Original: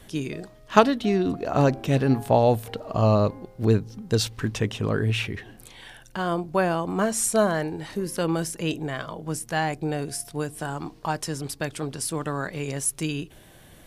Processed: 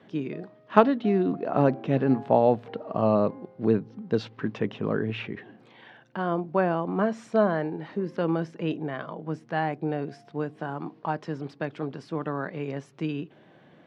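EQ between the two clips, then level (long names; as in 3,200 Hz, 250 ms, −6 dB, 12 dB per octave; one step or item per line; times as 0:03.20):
high-pass filter 150 Hz 24 dB per octave
low-pass filter 1,900 Hz 6 dB per octave
high-frequency loss of the air 200 metres
0.0 dB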